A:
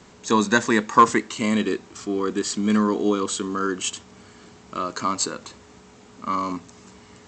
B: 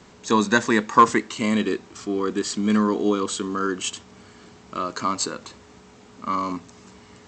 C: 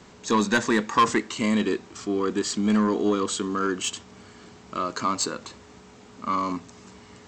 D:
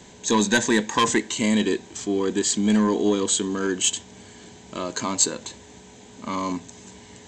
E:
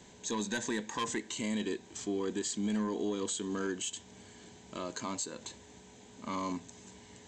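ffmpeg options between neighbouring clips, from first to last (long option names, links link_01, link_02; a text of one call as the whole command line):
ffmpeg -i in.wav -af "equalizer=frequency=7200:width=2.6:gain=-2.5" out.wav
ffmpeg -i in.wav -af "asoftclip=type=tanh:threshold=-13dB" out.wav
ffmpeg -i in.wav -af "superequalizer=10b=0.316:13b=1.58:15b=2.24:16b=2,volume=2dB" out.wav
ffmpeg -i in.wav -af "alimiter=limit=-17.5dB:level=0:latency=1:release=204,volume=-8.5dB" out.wav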